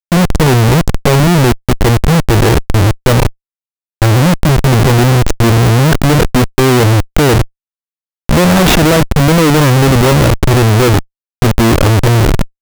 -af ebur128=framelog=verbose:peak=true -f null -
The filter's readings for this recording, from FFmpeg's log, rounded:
Integrated loudness:
  I:          -9.9 LUFS
  Threshold: -20.0 LUFS
Loudness range:
  LRA:         2.3 LU
  Threshold: -30.3 LUFS
  LRA low:   -11.5 LUFS
  LRA high:   -9.2 LUFS
True peak:
  Peak:        0.5 dBFS